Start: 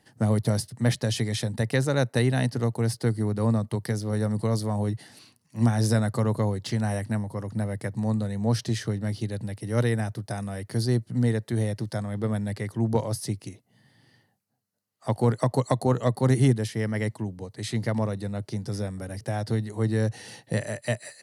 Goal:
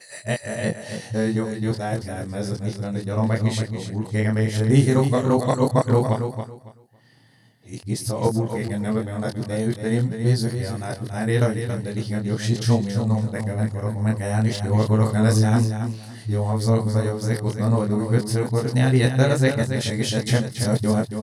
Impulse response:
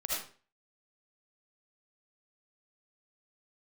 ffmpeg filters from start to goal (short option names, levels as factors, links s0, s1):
-af "areverse,flanger=delay=22.5:depth=5.5:speed=0.1,aecho=1:1:278|556|834:0.398|0.0836|0.0176,volume=2.24"